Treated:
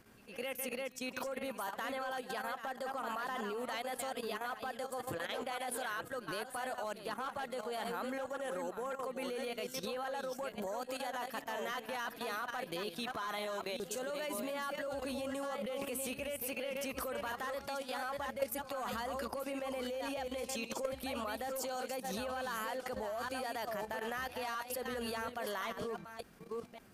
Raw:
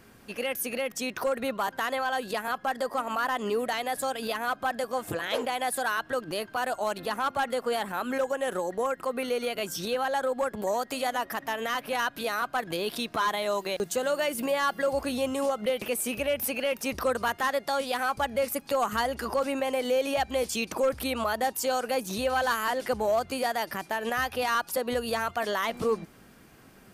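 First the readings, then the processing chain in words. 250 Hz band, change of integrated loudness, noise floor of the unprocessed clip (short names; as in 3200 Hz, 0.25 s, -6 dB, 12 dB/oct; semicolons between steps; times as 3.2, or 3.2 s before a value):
-9.5 dB, -10.5 dB, -54 dBFS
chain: reverse delay 0.558 s, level -6.5 dB; pre-echo 0.112 s -17 dB; level quantiser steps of 11 dB; gain -6 dB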